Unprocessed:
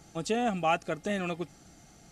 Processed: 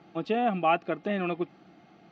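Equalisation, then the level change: air absorption 82 m; speaker cabinet 180–3900 Hz, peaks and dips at 190 Hz +5 dB, 340 Hz +7 dB, 720 Hz +4 dB, 1100 Hz +5 dB, 2500 Hz +3 dB; 0.0 dB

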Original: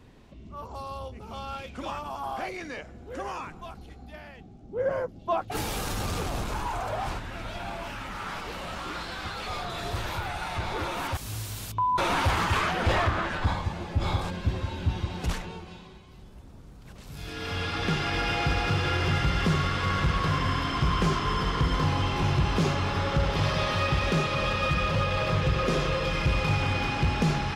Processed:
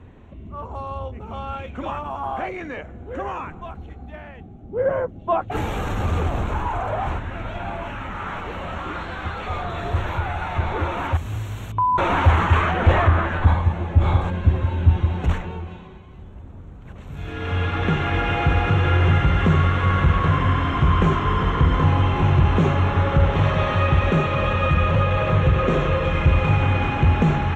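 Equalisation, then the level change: running mean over 9 samples; bell 83 Hz +10 dB 0.26 oct; +6.5 dB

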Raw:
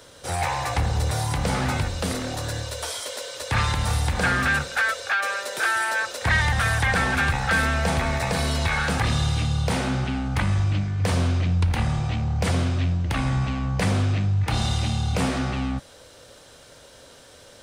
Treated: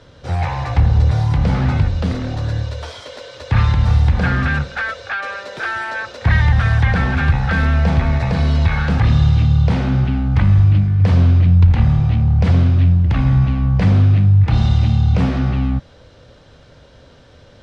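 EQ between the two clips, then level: air absorption 220 m; tone controls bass +10 dB, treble +4 dB; +1.5 dB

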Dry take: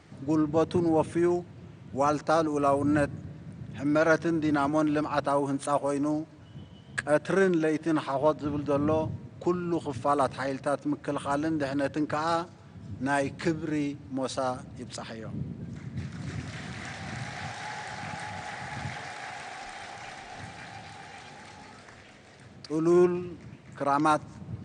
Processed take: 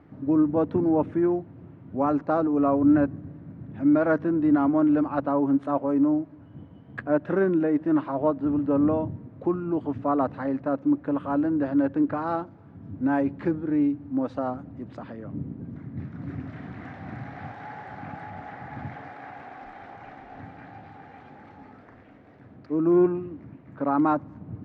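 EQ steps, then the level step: LPF 1400 Hz 12 dB/oct; bell 280 Hz +9.5 dB 0.33 oct; 0.0 dB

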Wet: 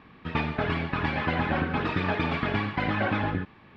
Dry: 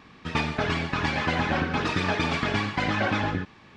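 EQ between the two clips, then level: air absorption 450 m; high shelf 4500 Hz +12 dB; 0.0 dB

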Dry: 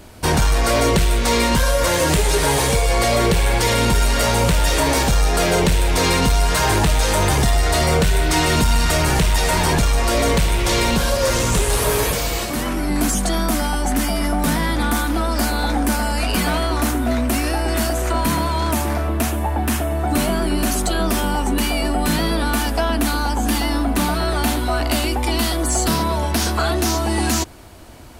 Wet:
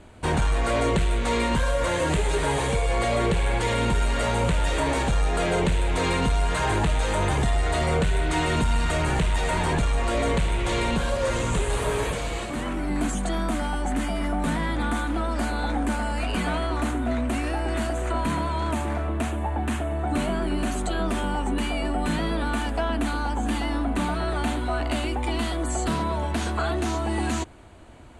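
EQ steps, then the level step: LPF 8300 Hz 24 dB/oct; bell 5300 Hz -14.5 dB 0.58 oct; -6.0 dB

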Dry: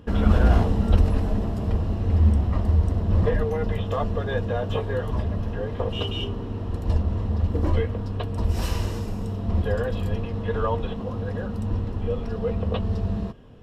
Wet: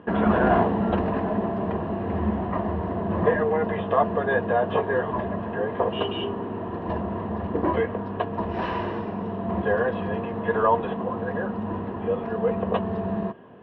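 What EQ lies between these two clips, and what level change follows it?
speaker cabinet 170–3000 Hz, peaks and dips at 190 Hz +5 dB, 370 Hz +8 dB, 680 Hz +9 dB, 1000 Hz +10 dB, 1700 Hz +8 dB; 0.0 dB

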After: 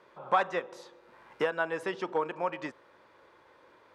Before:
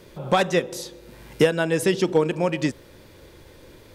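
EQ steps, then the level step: band-pass 1100 Hz, Q 1.9; 0.0 dB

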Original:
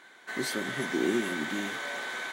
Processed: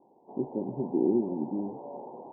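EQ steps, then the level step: steep low-pass 920 Hz 96 dB/oct; bell 660 Hz -6.5 dB 0.31 oct; +3.0 dB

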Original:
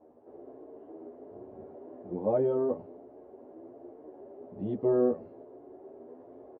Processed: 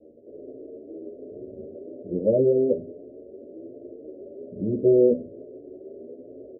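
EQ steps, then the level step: steep low-pass 600 Hz 72 dB/oct; notches 50/100/150/200/250/300/350/400 Hz; +8.5 dB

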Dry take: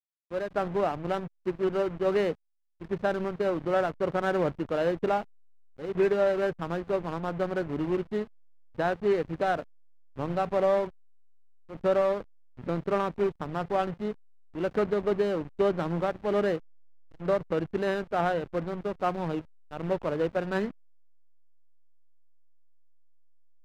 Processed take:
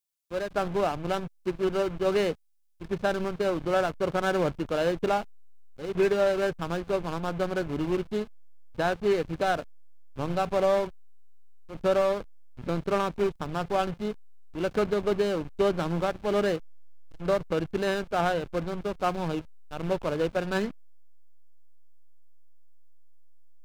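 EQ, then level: low shelf 68 Hz +9 dB; high shelf 3100 Hz +11.5 dB; notch 1900 Hz, Q 14; 0.0 dB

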